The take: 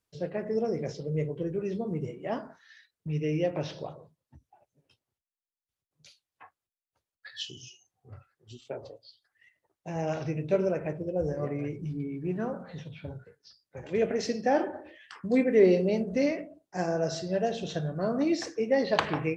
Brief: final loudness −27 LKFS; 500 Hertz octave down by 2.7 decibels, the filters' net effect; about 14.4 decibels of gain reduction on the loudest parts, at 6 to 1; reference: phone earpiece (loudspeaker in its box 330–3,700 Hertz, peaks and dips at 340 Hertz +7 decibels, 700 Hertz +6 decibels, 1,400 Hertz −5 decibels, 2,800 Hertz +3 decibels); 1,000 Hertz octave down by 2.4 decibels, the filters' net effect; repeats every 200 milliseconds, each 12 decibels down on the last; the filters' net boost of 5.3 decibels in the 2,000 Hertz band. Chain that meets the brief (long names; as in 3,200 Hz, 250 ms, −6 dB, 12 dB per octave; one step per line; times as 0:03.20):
parametric band 500 Hz −4 dB
parametric band 1,000 Hz −8.5 dB
parametric band 2,000 Hz +9 dB
downward compressor 6 to 1, threshold −34 dBFS
loudspeaker in its box 330–3,700 Hz, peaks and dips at 340 Hz +7 dB, 700 Hz +6 dB, 1,400 Hz −5 dB, 2,800 Hz +3 dB
repeating echo 200 ms, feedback 25%, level −12 dB
level +13 dB